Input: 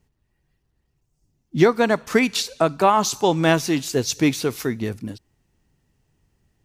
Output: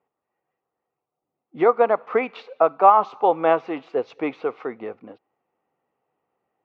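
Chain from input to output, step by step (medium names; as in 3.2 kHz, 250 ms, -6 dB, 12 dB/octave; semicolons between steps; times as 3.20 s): cabinet simulation 410–2300 Hz, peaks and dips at 500 Hz +8 dB, 760 Hz +9 dB, 1.2 kHz +8 dB, 1.7 kHz -8 dB; trim -3 dB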